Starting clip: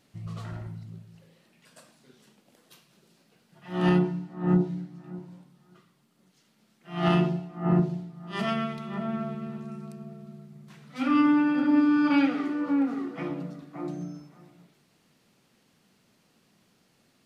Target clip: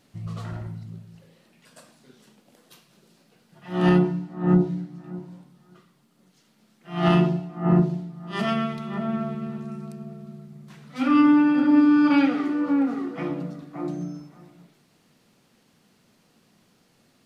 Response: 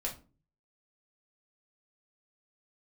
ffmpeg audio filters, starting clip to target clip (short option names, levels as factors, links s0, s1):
-filter_complex "[0:a]asplit=2[s0][s1];[1:a]atrim=start_sample=2205,lowpass=f=2700:w=0.5412,lowpass=f=2700:w=1.3066[s2];[s1][s2]afir=irnorm=-1:irlink=0,volume=0.158[s3];[s0][s3]amix=inputs=2:normalize=0,volume=1.41"